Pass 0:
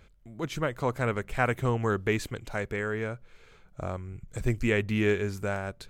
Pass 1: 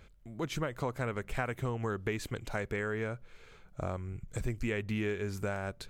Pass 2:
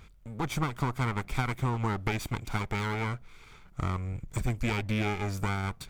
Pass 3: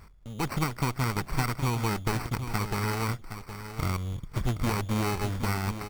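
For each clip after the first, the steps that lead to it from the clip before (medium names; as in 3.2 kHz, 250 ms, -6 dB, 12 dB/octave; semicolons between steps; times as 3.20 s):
compression, threshold -30 dBFS, peak gain reduction 10.5 dB
comb filter that takes the minimum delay 0.86 ms; trim +5 dB
sample-rate reducer 3.4 kHz, jitter 0%; delay 767 ms -10.5 dB; trim +1.5 dB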